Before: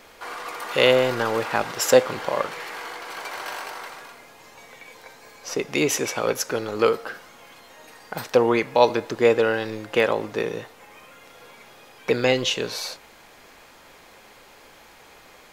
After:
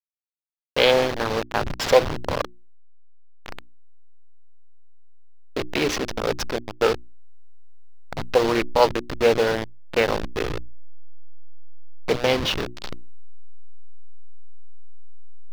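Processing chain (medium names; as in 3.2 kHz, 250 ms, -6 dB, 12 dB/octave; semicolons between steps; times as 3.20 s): send-on-delta sampling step -19.5 dBFS; resonant high shelf 6.1 kHz -8 dB, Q 1.5; hum notches 60/120/180/240/300/360 Hz; loudspeaker Doppler distortion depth 0.21 ms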